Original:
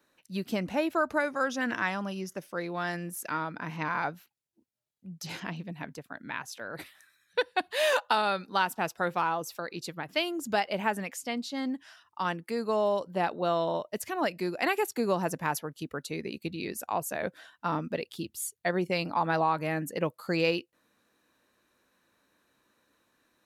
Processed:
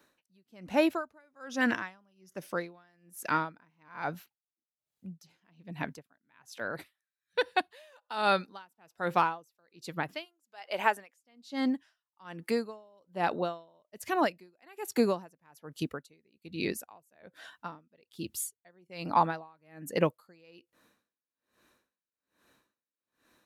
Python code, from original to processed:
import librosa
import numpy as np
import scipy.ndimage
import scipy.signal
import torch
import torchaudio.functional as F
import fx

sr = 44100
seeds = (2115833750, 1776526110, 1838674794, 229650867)

y = fx.highpass(x, sr, hz=fx.line((10.24, 790.0), (11.15, 350.0)), slope=12, at=(10.24, 11.15), fade=0.02)
y = y * 10.0 ** (-38 * (0.5 - 0.5 * np.cos(2.0 * np.pi * 1.2 * np.arange(len(y)) / sr)) / 20.0)
y = y * 10.0 ** (4.5 / 20.0)